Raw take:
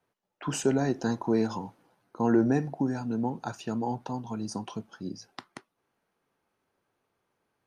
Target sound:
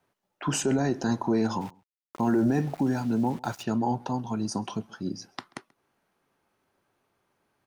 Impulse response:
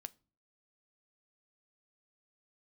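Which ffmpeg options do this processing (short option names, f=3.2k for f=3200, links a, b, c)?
-filter_complex "[0:a]bandreject=f=470:w=12,alimiter=limit=-21dB:level=0:latency=1:release=18,asplit=3[a][b][c];[a]afade=t=out:st=1.6:d=0.02[d];[b]aeval=exprs='val(0)*gte(abs(val(0)),0.00473)':c=same,afade=t=in:st=1.6:d=0.02,afade=t=out:st=3.62:d=0.02[e];[c]afade=t=in:st=3.62:d=0.02[f];[d][e][f]amix=inputs=3:normalize=0,asplit=2[g][h];[h]adelay=134.1,volume=-26dB,highshelf=f=4k:g=-3.02[i];[g][i]amix=inputs=2:normalize=0,volume=4.5dB"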